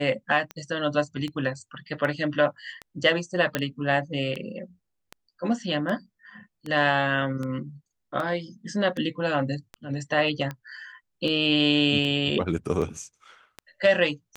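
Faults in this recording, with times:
tick 78 rpm -20 dBFS
3.55 s: pop -9 dBFS

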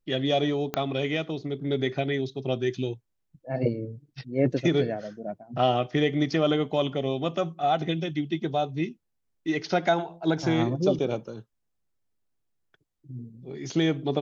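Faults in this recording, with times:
0.74 s: pop -13 dBFS

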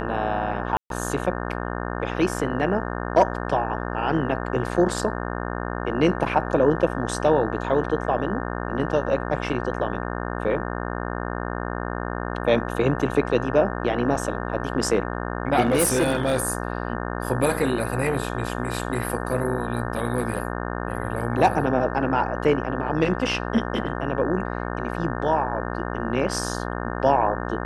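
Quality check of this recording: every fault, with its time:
buzz 60 Hz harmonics 30 -29 dBFS
0.77–0.90 s: dropout 132 ms
15.62–16.38 s: clipped -15 dBFS

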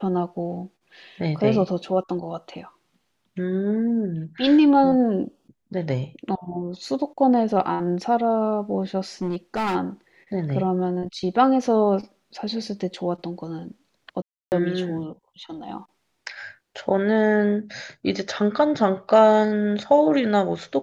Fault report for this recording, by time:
9.22–9.76 s: clipped -21 dBFS
14.22–14.52 s: dropout 299 ms

